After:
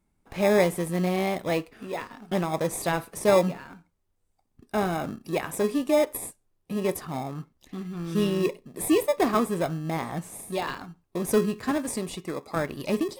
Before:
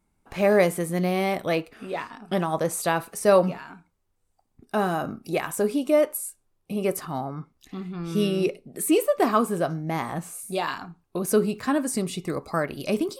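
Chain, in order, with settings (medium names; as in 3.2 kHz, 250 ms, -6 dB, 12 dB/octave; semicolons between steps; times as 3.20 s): 11.71–12.56 s: high-pass 280 Hz 6 dB/octave; in parallel at -8 dB: sample-and-hold 30×; on the sum: trim -3.5 dB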